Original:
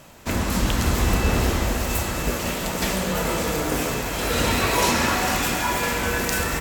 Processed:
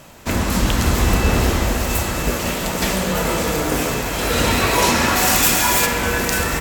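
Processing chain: 5.15–5.85 high shelf 5900 Hz -> 3600 Hz +10.5 dB; gain +4 dB

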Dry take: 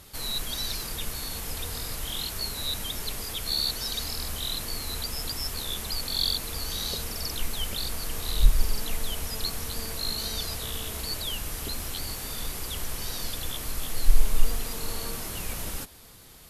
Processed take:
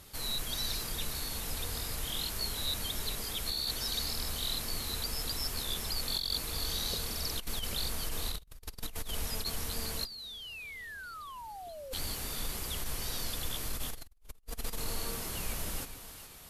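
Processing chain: split-band echo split 580 Hz, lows 0.155 s, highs 0.414 s, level -11 dB; painted sound fall, 10.05–11.93, 510–4900 Hz -22 dBFS; negative-ratio compressor -28 dBFS, ratio -0.5; gain -7.5 dB

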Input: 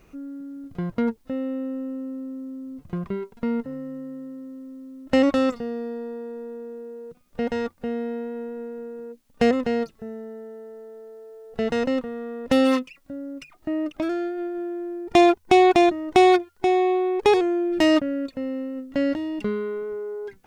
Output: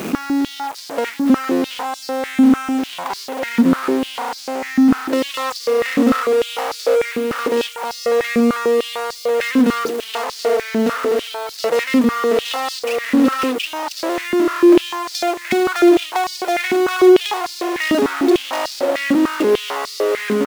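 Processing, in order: on a send: feedback echo 0.725 s, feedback 32%, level -10 dB; on the sum: compressor 6:1, threshold -30 dBFS, peak gain reduction 17.5 dB; 17.94–18.45 comb 4.6 ms, depth 86%; power-law curve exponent 0.35; bit-crush 6-bit; stepped high-pass 6.7 Hz 230–4700 Hz

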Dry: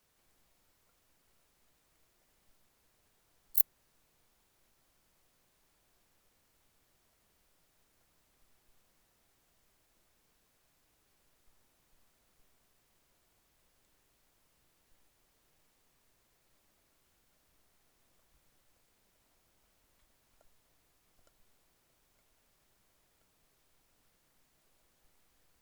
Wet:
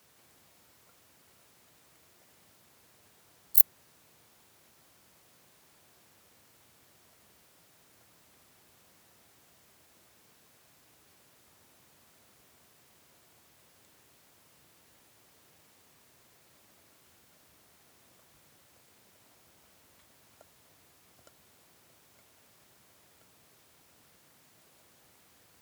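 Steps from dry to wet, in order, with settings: HPF 78 Hz 24 dB/oct; maximiser +12 dB; gain -1 dB

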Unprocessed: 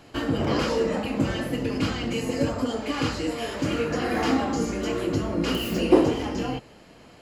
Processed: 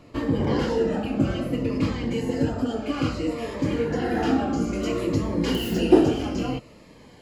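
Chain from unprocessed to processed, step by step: high shelf 2700 Hz -10 dB, from 4.73 s -3 dB; cascading phaser falling 0.6 Hz; gain +2.5 dB

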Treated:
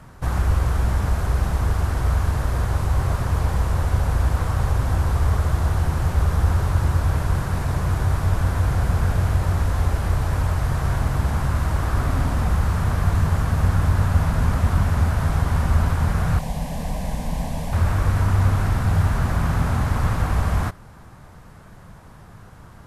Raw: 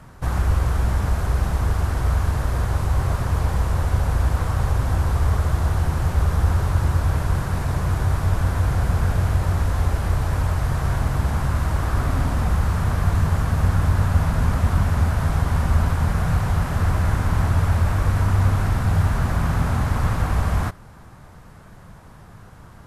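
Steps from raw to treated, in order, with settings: 16.39–17.73 fixed phaser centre 360 Hz, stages 6

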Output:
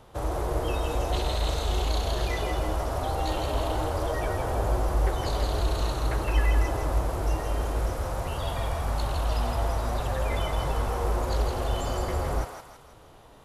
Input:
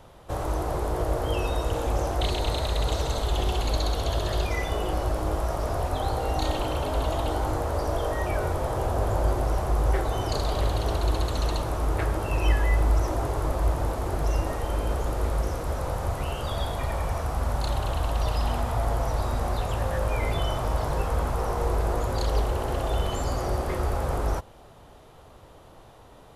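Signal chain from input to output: time stretch by phase-locked vocoder 0.51×; on a send: thinning echo 0.162 s, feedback 48%, high-pass 850 Hz, level -4 dB

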